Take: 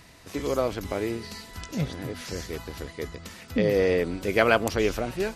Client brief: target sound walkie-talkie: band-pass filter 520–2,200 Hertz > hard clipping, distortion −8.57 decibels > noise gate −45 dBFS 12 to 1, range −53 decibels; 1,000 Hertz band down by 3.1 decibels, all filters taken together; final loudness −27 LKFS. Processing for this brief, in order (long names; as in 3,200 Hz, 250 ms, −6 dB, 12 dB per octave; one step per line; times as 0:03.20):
band-pass filter 520–2,200 Hz
parametric band 1,000 Hz −3.5 dB
hard clipping −25 dBFS
noise gate −45 dBFS 12 to 1, range −53 dB
level +7.5 dB